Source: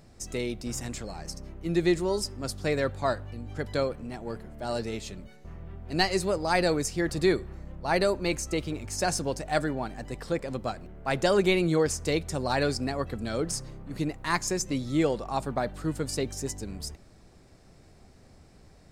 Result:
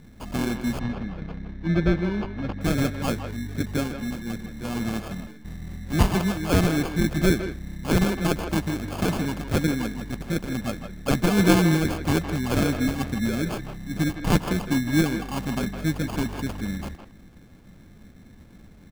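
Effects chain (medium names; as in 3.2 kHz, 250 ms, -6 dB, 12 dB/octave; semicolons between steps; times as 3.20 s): FFT filter 140 Hz 0 dB, 200 Hz +7 dB, 300 Hz +1 dB, 630 Hz -28 dB, 1.1 kHz -3 dB, 1.8 kHz +8 dB, 2.6 kHz +7 dB, 5.4 kHz -22 dB, 10 kHz +5 dB; sample-and-hold 23×; 0.79–2.61 s: distance through air 260 m; speakerphone echo 160 ms, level -8 dB; trim +5 dB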